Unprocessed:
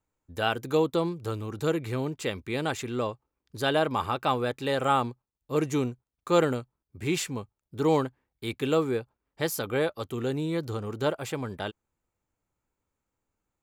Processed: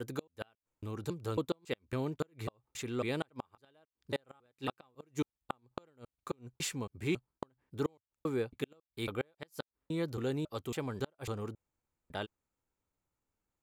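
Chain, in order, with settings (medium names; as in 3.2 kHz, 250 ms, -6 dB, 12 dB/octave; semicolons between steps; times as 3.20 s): slices played last to first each 275 ms, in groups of 3; inverted gate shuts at -17 dBFS, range -37 dB; trim -5 dB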